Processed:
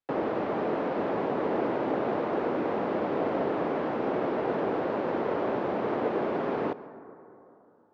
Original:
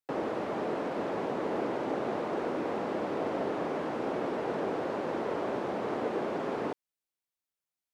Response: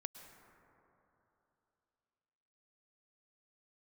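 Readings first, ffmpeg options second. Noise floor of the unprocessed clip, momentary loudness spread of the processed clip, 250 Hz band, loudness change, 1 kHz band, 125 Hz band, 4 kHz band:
under -85 dBFS, 1 LU, +4.0 dB, +4.0 dB, +4.0 dB, +4.0 dB, 0.0 dB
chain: -filter_complex "[0:a]adynamicsmooth=sensitivity=2.5:basefreq=3.9k,lowpass=5.9k,asplit=2[a][b];[1:a]atrim=start_sample=2205[c];[b][c]afir=irnorm=-1:irlink=0,volume=-0.5dB[d];[a][d]amix=inputs=2:normalize=0"

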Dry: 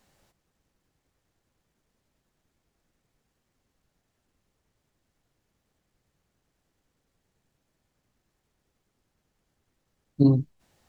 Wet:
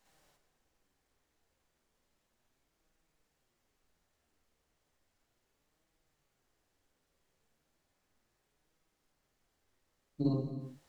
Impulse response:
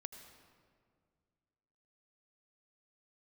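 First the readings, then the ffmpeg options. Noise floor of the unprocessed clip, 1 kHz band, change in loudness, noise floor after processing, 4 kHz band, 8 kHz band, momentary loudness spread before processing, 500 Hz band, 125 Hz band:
-79 dBFS, -5.5 dB, -12.5 dB, -81 dBFS, -6.0 dB, n/a, 13 LU, -9.0 dB, -12.5 dB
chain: -filter_complex "[0:a]equalizer=f=130:w=0.62:g=-8.5,acompressor=threshold=-27dB:ratio=2,flanger=delay=6.2:depth=7:regen=49:speed=0.34:shape=sinusoidal,asplit=2[a][b];[1:a]atrim=start_sample=2205,afade=t=out:st=0.37:d=0.01,atrim=end_sample=16758,adelay=53[c];[b][c]afir=irnorm=-1:irlink=0,volume=7.5dB[d];[a][d]amix=inputs=2:normalize=0,volume=-2dB"

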